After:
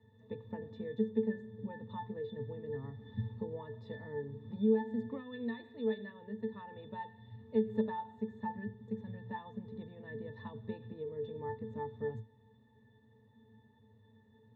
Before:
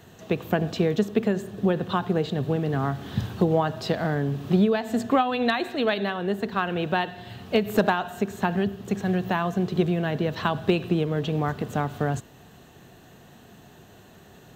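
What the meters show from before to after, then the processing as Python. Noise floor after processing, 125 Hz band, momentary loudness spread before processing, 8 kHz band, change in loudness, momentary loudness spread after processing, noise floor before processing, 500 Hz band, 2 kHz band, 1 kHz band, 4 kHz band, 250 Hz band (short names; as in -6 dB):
-65 dBFS, -17.5 dB, 6 LU, under -30 dB, -14.0 dB, 13 LU, -51 dBFS, -12.5 dB, -20.5 dB, -17.5 dB, -24.5 dB, -13.0 dB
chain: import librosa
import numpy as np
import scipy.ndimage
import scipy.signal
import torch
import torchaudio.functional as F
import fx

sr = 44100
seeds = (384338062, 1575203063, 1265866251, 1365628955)

y = fx.octave_resonator(x, sr, note='A', decay_s=0.19)
y = y * 10.0 ** (-3.0 / 20.0)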